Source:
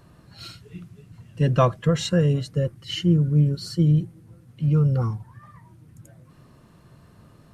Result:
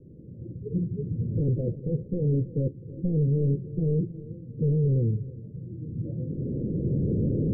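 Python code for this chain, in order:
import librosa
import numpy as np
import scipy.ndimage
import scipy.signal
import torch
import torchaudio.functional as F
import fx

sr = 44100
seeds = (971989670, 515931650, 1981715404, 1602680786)

p1 = fx.recorder_agc(x, sr, target_db=-14.5, rise_db_per_s=13.0, max_gain_db=30)
p2 = fx.low_shelf(p1, sr, hz=140.0, db=-8.5)
p3 = fx.fold_sine(p2, sr, drive_db=18, ceiling_db=-6.0)
p4 = p2 + F.gain(torch.from_numpy(p3), -9.5).numpy()
p5 = scipy.signal.sosfilt(scipy.signal.butter(12, 510.0, 'lowpass', fs=sr, output='sos'), p4)
p6 = p5 + fx.echo_feedback(p5, sr, ms=320, feedback_pct=33, wet_db=-17.5, dry=0)
y = F.gain(torch.from_numpy(p6), -7.5).numpy()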